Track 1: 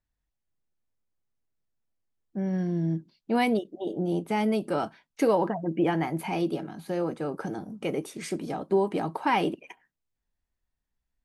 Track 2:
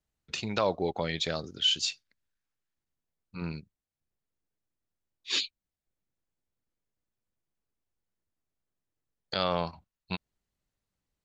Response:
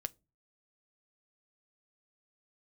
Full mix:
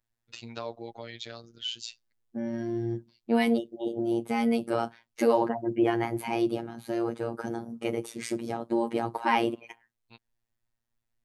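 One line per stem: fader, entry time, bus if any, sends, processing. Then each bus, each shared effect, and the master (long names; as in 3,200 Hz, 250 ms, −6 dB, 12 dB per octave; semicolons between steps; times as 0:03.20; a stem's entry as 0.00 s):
+1.0 dB, 0.00 s, send −15 dB, no processing
−7.5 dB, 0.00 s, no send, pitch vibrato 0.59 Hz 19 cents; automatic ducking −22 dB, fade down 0.25 s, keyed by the first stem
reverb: on, RT60 0.30 s, pre-delay 6 ms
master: phases set to zero 116 Hz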